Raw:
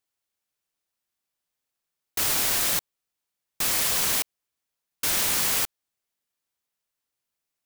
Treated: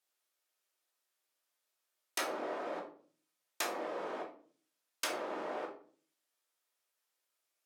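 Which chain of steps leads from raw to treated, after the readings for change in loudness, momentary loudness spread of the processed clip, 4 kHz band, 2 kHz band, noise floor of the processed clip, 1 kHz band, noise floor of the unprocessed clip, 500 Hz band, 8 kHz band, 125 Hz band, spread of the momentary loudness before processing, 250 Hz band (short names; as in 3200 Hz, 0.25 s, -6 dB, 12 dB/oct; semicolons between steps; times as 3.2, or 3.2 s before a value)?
-17.0 dB, 10 LU, -17.0 dB, -11.5 dB, -85 dBFS, -5.0 dB, -85 dBFS, +0.5 dB, -21.0 dB, -24.0 dB, 8 LU, -5.0 dB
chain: treble ducked by the level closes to 650 Hz, closed at -22.5 dBFS; HPF 370 Hz 24 dB/oct; shoebox room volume 380 m³, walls furnished, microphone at 2.7 m; gain -2.5 dB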